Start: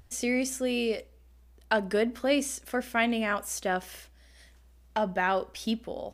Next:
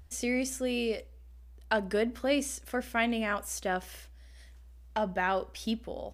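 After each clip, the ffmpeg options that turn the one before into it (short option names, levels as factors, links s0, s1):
-af "equalizer=f=66:t=o:w=0.46:g=11,volume=0.75"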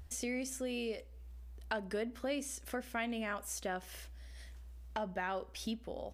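-af "acompressor=threshold=0.00631:ratio=2,volume=1.19"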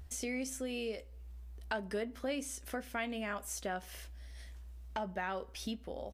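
-filter_complex "[0:a]asplit=2[s0][s1];[s1]adelay=15,volume=0.237[s2];[s0][s2]amix=inputs=2:normalize=0"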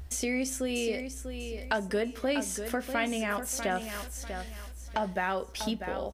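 -af "aecho=1:1:644|1288|1932|2576:0.376|0.117|0.0361|0.0112,volume=2.37"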